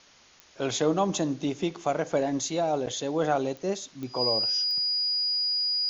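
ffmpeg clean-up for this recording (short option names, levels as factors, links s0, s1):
-af "adeclick=t=4,bandreject=f=4900:w=30,afwtdn=0.0022"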